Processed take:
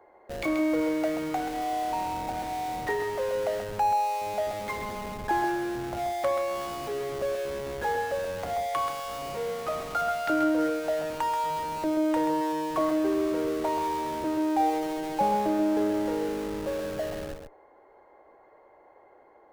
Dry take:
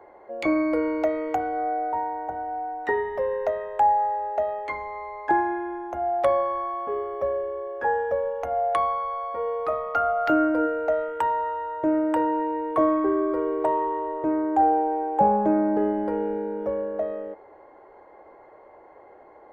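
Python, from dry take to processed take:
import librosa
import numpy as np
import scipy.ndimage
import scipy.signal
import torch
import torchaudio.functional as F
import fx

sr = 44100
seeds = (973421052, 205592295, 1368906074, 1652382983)

p1 = fx.high_shelf(x, sr, hz=2800.0, db=5.5)
p2 = fx.schmitt(p1, sr, flips_db=-31.5)
p3 = p1 + F.gain(torch.from_numpy(p2), -6.0).numpy()
p4 = p3 + 10.0 ** (-7.0 / 20.0) * np.pad(p3, (int(132 * sr / 1000.0), 0))[:len(p3)]
y = F.gain(torch.from_numpy(p4), -7.5).numpy()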